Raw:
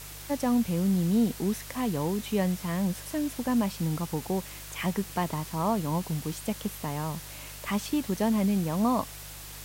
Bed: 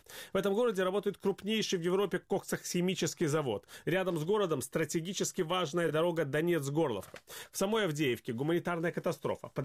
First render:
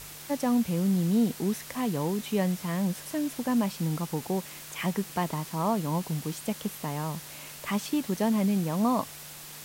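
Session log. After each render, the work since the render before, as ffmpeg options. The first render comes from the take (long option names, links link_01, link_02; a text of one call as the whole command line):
ffmpeg -i in.wav -af "bandreject=frequency=50:width_type=h:width=4,bandreject=frequency=100:width_type=h:width=4" out.wav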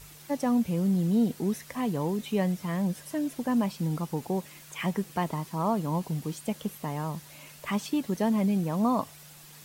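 ffmpeg -i in.wav -af "afftdn=noise_reduction=8:noise_floor=-44" out.wav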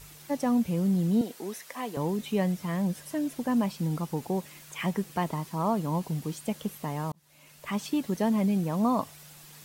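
ffmpeg -i in.wav -filter_complex "[0:a]asettb=1/sr,asplit=3[link_01][link_02][link_03];[link_01]atrim=end=1.214[link_04];[link_02]atrim=start=1.21:end=1.97,asetpts=PTS-STARTPTS,afade=type=in:duration=0.004:curve=qsin,afade=type=out:start_time=0.756:duration=0.004:curve=qsin,highpass=420[link_05];[link_03]atrim=start=1.966[link_06];[link_04][link_05]acrossfade=duration=0.004:curve1=hsin:curve2=qsin[link_07];[link_07][link_06]acrossfade=duration=0.004:curve1=qsin:curve2=hsin,asplit=2[link_08][link_09];[link_08]atrim=end=7.12,asetpts=PTS-STARTPTS,afade=type=out:start_time=7.116:duration=0.004:curve=hsin[link_10];[link_09]atrim=start=7.12,asetpts=PTS-STARTPTS,afade=type=in:duration=0.77[link_11];[link_10][link_11]concat=n=2:v=0:a=1" out.wav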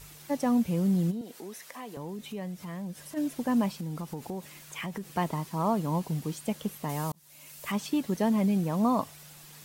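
ffmpeg -i in.wav -filter_complex "[0:a]asplit=3[link_01][link_02][link_03];[link_01]afade=type=out:start_time=1.1:duration=0.02[link_04];[link_02]acompressor=threshold=-42dB:ratio=2:attack=3.2:release=140:knee=1:detection=peak,afade=type=in:start_time=1.1:duration=0.02,afade=type=out:start_time=3.16:duration=0.02[link_05];[link_03]afade=type=in:start_time=3.16:duration=0.02[link_06];[link_04][link_05][link_06]amix=inputs=3:normalize=0,asettb=1/sr,asplit=3[link_07][link_08][link_09];[link_07]atrim=end=3.724[link_10];[link_08]atrim=start=3.72:end=5.07,asetpts=PTS-STARTPTS,afade=type=in:duration=0.004:curve=qsin,afade=type=out:start_time=1.346:duration=0.004:curve=qsin,acompressor=threshold=-32dB:ratio=6:attack=3.2:release=140:knee=1:detection=peak[link_11];[link_09]atrim=start=5.066[link_12];[link_10][link_11]acrossfade=duration=0.004:curve1=hsin:curve2=qsin[link_13];[link_13][link_12]acrossfade=duration=0.004:curve1=qsin:curve2=hsin,asettb=1/sr,asplit=3[link_14][link_15][link_16];[link_14]atrim=end=6.894[link_17];[link_15]atrim=start=6.89:end=7.72,asetpts=PTS-STARTPTS,afade=type=in:duration=0.004:curve=qsin,afade=type=out:start_time=0.826:duration=0.004:curve=qsin,highshelf=frequency=4600:gain=10.5[link_18];[link_16]atrim=start=7.716[link_19];[link_17][link_18]acrossfade=duration=0.004:curve1=hsin:curve2=qsin[link_20];[link_20][link_19]acrossfade=duration=0.004:curve1=qsin:curve2=hsin" out.wav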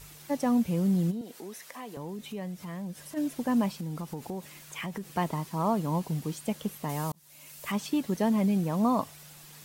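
ffmpeg -i in.wav -af anull out.wav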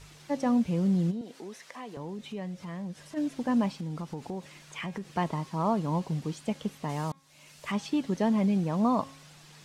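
ffmpeg -i in.wav -af "lowpass=6200,bandreject=frequency=271.5:width_type=h:width=4,bandreject=frequency=543:width_type=h:width=4,bandreject=frequency=814.5:width_type=h:width=4,bandreject=frequency=1086:width_type=h:width=4,bandreject=frequency=1357.5:width_type=h:width=4,bandreject=frequency=1629:width_type=h:width=4,bandreject=frequency=1900.5:width_type=h:width=4,bandreject=frequency=2172:width_type=h:width=4,bandreject=frequency=2443.5:width_type=h:width=4,bandreject=frequency=2715:width_type=h:width=4,bandreject=frequency=2986.5:width_type=h:width=4,bandreject=frequency=3258:width_type=h:width=4,bandreject=frequency=3529.5:width_type=h:width=4,bandreject=frequency=3801:width_type=h:width=4" out.wav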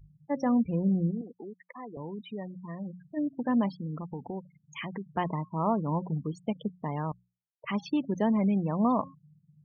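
ffmpeg -i in.wav -af "afftfilt=real='re*gte(hypot(re,im),0.0158)':imag='im*gte(hypot(re,im),0.0158)':win_size=1024:overlap=0.75,bandreject=frequency=60:width_type=h:width=6,bandreject=frequency=120:width_type=h:width=6,bandreject=frequency=180:width_type=h:width=6" out.wav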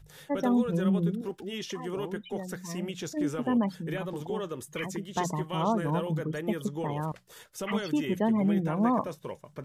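ffmpeg -i in.wav -i bed.wav -filter_complex "[1:a]volume=-4.5dB[link_01];[0:a][link_01]amix=inputs=2:normalize=0" out.wav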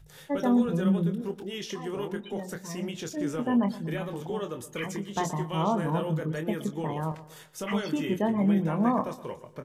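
ffmpeg -i in.wav -filter_complex "[0:a]asplit=2[link_01][link_02];[link_02]adelay=25,volume=-8dB[link_03];[link_01][link_03]amix=inputs=2:normalize=0,asplit=2[link_04][link_05];[link_05]adelay=121,lowpass=frequency=3400:poles=1,volume=-15.5dB,asplit=2[link_06][link_07];[link_07]adelay=121,lowpass=frequency=3400:poles=1,volume=0.43,asplit=2[link_08][link_09];[link_09]adelay=121,lowpass=frequency=3400:poles=1,volume=0.43,asplit=2[link_10][link_11];[link_11]adelay=121,lowpass=frequency=3400:poles=1,volume=0.43[link_12];[link_04][link_06][link_08][link_10][link_12]amix=inputs=5:normalize=0" out.wav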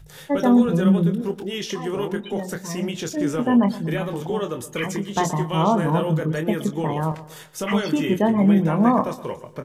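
ffmpeg -i in.wav -af "volume=7.5dB" out.wav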